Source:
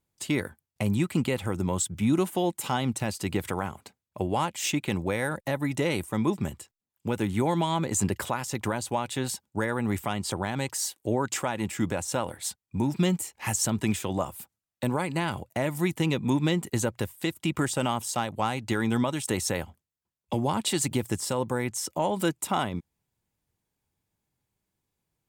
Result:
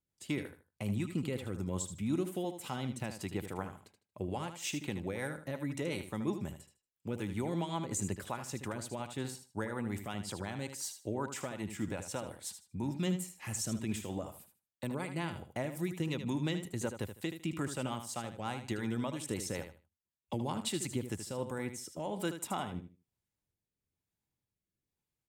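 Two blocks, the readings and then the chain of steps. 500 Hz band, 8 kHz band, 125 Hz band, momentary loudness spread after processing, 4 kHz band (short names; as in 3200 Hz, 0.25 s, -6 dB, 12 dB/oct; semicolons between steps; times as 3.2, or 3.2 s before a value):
-9.5 dB, -10.0 dB, -9.0 dB, 7 LU, -9.5 dB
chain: rotary speaker horn 5.5 Hz, later 1.1 Hz, at 20.67; feedback echo 77 ms, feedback 22%, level -9.5 dB; gain -8 dB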